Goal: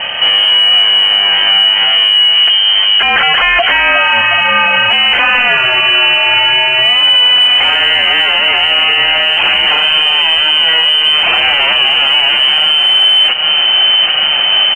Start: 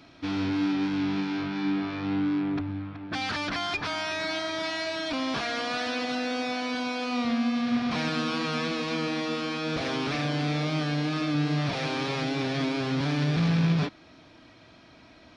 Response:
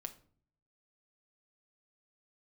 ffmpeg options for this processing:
-filter_complex "[0:a]lowpass=frequency=2600:width_type=q:width=0.5098,lowpass=frequency=2600:width_type=q:width=0.6013,lowpass=frequency=2600:width_type=q:width=0.9,lowpass=frequency=2600:width_type=q:width=2.563,afreqshift=-3100,asetrate=45938,aresample=44100,aecho=1:1:785|1570|2355|3140:0.168|0.0823|0.0403|0.0198,asplit=2[link_01][link_02];[1:a]atrim=start_sample=2205[link_03];[link_02][link_03]afir=irnorm=-1:irlink=0,volume=-5.5dB[link_04];[link_01][link_04]amix=inputs=2:normalize=0,aeval=exprs='0.251*(cos(1*acos(clip(val(0)/0.251,-1,1)))-cos(1*PI/2))+0.002*(cos(3*acos(clip(val(0)/0.251,-1,1)))-cos(3*PI/2))+0.00398*(cos(5*acos(clip(val(0)/0.251,-1,1)))-cos(5*PI/2))':channel_layout=same,acompressor=threshold=-36dB:ratio=6,alimiter=level_in=33.5dB:limit=-1dB:release=50:level=0:latency=1,volume=-1dB"

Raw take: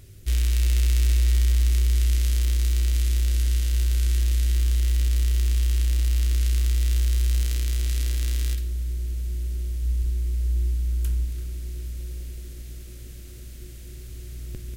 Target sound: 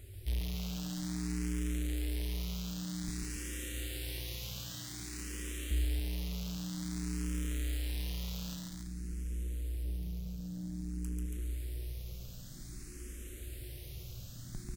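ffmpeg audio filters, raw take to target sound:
ffmpeg -i in.wav -filter_complex "[0:a]asettb=1/sr,asplit=3[link_01][link_02][link_03];[link_01]atrim=end=3.084[link_04];[link_02]atrim=start=3.08:end=5.71,asetpts=PTS-STARTPTS,afade=type=in:duration=0.004:curve=qsin,afade=type=out:start_time=2.626:duration=0.004:curve=qsin,highpass=frequency=90:width=0.5412,highpass=frequency=90:width=1.3066[link_05];[link_03]atrim=start=5.706[link_06];[link_04][link_05]acrossfade=duration=0.004:curve1=hsin:curve2=qsin[link_07];[link_07][link_06]acrossfade=duration=0.004:curve1=qsin:curve2=hsin,asoftclip=type=tanh:threshold=-27.5dB,aecho=1:1:139.9|279.9:0.708|0.562,asplit=2[link_08][link_09];[link_09]afreqshift=0.52[link_10];[link_08][link_10]amix=inputs=2:normalize=1,volume=-1.5dB" out.wav

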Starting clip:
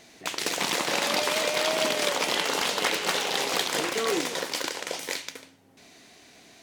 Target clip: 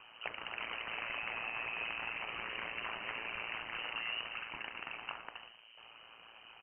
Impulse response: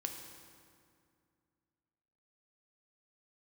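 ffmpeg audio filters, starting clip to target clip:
-filter_complex "[0:a]highpass=49,volume=19dB,asoftclip=hard,volume=-19dB,acompressor=threshold=-37dB:ratio=4,asplit=6[link_01][link_02][link_03][link_04][link_05][link_06];[link_02]adelay=116,afreqshift=83,volume=-14dB[link_07];[link_03]adelay=232,afreqshift=166,volume=-20dB[link_08];[link_04]adelay=348,afreqshift=249,volume=-26dB[link_09];[link_05]adelay=464,afreqshift=332,volume=-32.1dB[link_10];[link_06]adelay=580,afreqshift=415,volume=-38.1dB[link_11];[link_01][link_07][link_08][link_09][link_10][link_11]amix=inputs=6:normalize=0,lowpass=frequency=2700:width_type=q:width=0.5098,lowpass=frequency=2700:width_type=q:width=0.6013,lowpass=frequency=2700:width_type=q:width=0.9,lowpass=frequency=2700:width_type=q:width=2.563,afreqshift=-3200,aeval=exprs='val(0)*sin(2*PI*57*n/s)':channel_layout=same,volume=1.5dB"

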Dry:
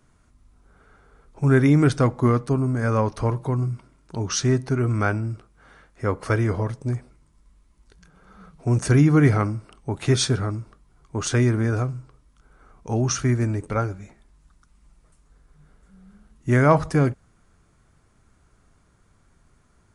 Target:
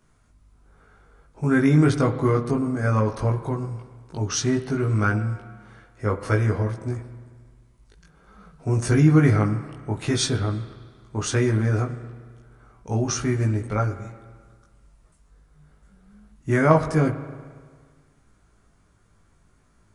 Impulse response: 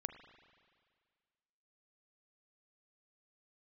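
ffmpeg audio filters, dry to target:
-filter_complex "[0:a]asplit=2[link_01][link_02];[1:a]atrim=start_sample=2205,asetrate=48510,aresample=44100,adelay=19[link_03];[link_02][link_03]afir=irnorm=-1:irlink=0,volume=2.5dB[link_04];[link_01][link_04]amix=inputs=2:normalize=0,volume=-3dB"

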